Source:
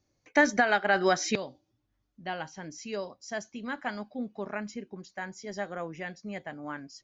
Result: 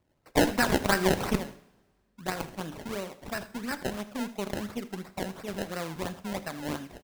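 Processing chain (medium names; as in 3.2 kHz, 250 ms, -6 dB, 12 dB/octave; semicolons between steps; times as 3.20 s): dynamic bell 620 Hz, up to -6 dB, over -38 dBFS, Q 1.2; in parallel at -2.5 dB: compression, threshold -35 dBFS, peak gain reduction 14.5 dB; on the sum: Chebyshev shaper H 4 -11 dB, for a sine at -9.5 dBFS; decimation with a swept rate 26×, swing 100% 2.9 Hz; on a send: delay 80 ms -17.5 dB; on the sum: two-slope reverb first 0.68 s, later 2.1 s, from -21 dB, DRR 12.5 dB; trim -2 dB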